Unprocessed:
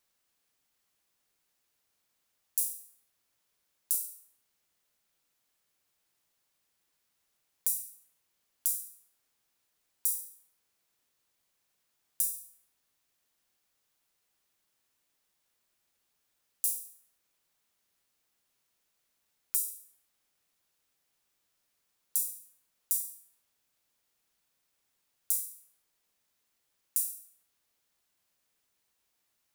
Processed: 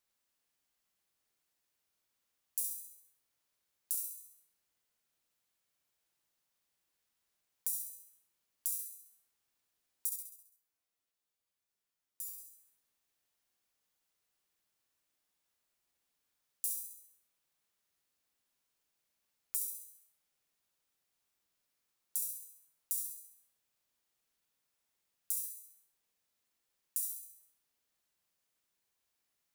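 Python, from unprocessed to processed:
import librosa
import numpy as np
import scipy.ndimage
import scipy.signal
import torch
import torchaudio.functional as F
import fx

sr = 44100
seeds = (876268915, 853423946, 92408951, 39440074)

y = fx.comb_fb(x, sr, f0_hz=96.0, decay_s=0.2, harmonics='all', damping=0.0, mix_pct=90, at=(10.09, 12.38))
y = fx.echo_feedback(y, sr, ms=67, feedback_pct=52, wet_db=-5.5)
y = y * librosa.db_to_amplitude(-6.5)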